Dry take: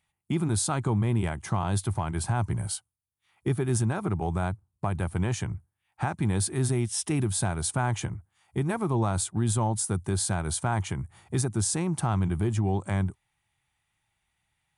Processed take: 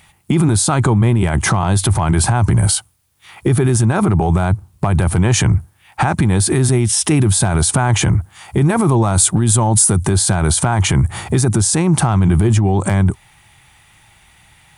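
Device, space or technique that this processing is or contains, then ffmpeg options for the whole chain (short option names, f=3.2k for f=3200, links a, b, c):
loud club master: -filter_complex "[0:a]acompressor=threshold=-31dB:ratio=2,asoftclip=type=hard:threshold=-21.5dB,alimiter=level_in=33.5dB:limit=-1dB:release=50:level=0:latency=1,asettb=1/sr,asplit=3[a][b][c];[a]atrim=end=8.764[d];[b]atrim=start=8.76:end=10.05,asetpts=PTS-STARTPTS,afade=t=in:d=0.004:c=qsin,afade=t=out:st=1.286:d=0.004:c=qsin,equalizer=f=10k:w=0.69:g=5[e];[c]atrim=start=10.046[f];[d][e]acrossfade=d=0.004:c1=hsin:c2=qsin[g];[g][f]acrossfade=d=0.004:c1=qsin:c2=hsin,volume=-5.5dB"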